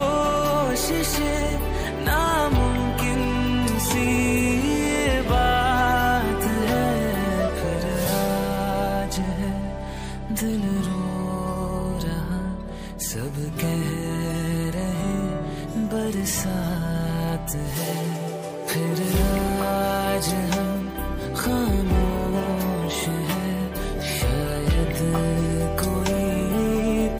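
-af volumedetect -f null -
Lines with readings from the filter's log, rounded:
mean_volume: -23.1 dB
max_volume: -9.9 dB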